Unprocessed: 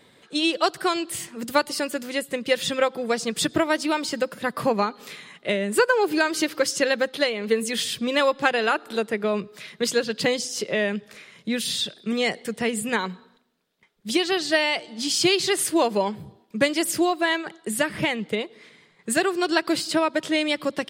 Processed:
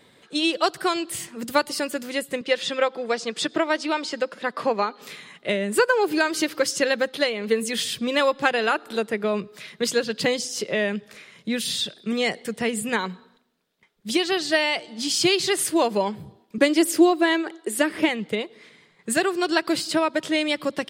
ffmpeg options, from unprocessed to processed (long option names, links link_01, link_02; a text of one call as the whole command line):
ffmpeg -i in.wav -filter_complex "[0:a]asettb=1/sr,asplit=3[link_01][link_02][link_03];[link_01]atrim=end=2.414[link_04];[link_02]atrim=start=2.41:end=5.02,asetpts=PTS-STARTPTS,afade=type=in:duration=0.004:curve=qsin,afade=type=out:start_time=2.606:duration=0.004:curve=qsin,highpass=290,lowpass=6100[link_05];[link_03]atrim=start=5.016[link_06];[link_04][link_05]acrossfade=duration=0.004:curve1=hsin:curve2=qsin[link_07];[link_07][link_06]acrossfade=duration=0.004:curve1=qsin:curve2=hsin,asettb=1/sr,asplit=3[link_08][link_09][link_10];[link_08]atrim=end=16.584[link_11];[link_09]atrim=start=16.58:end=18.09,asetpts=PTS-STARTPTS,afade=type=in:duration=0.004:curve=qsin,afade=type=out:start_time=1.506:duration=0.004:curve=qsin,lowshelf=frequency=230:width_type=q:width=3:gain=-10[link_12];[link_10]atrim=start=18.086[link_13];[link_11][link_12]acrossfade=duration=0.004:curve1=hsin:curve2=qsin[link_14];[link_14][link_13]acrossfade=duration=0.004:curve1=qsin:curve2=hsin" out.wav